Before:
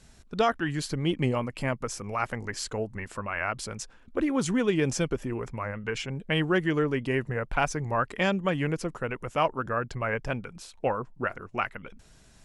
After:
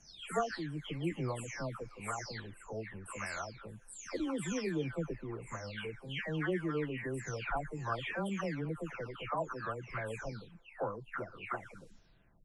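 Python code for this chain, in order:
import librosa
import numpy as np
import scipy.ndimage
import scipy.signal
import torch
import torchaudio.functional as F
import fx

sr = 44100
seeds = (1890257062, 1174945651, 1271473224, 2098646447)

y = fx.spec_delay(x, sr, highs='early', ms=532)
y = F.gain(torch.from_numpy(y), -8.5).numpy()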